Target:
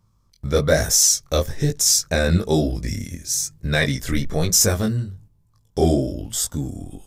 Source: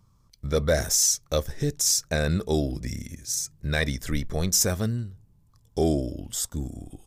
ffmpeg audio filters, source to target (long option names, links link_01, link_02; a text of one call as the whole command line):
ffmpeg -i in.wav -af "flanger=delay=18:depth=5.4:speed=1.1,agate=range=-7dB:threshold=-54dB:ratio=16:detection=peak,volume=9dB" out.wav